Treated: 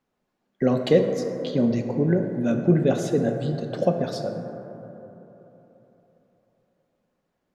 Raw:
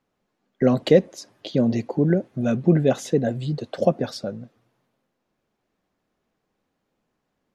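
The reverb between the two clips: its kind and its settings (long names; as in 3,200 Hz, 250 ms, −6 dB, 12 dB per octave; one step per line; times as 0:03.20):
dense smooth reverb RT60 3.6 s, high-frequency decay 0.25×, DRR 4 dB
level −3 dB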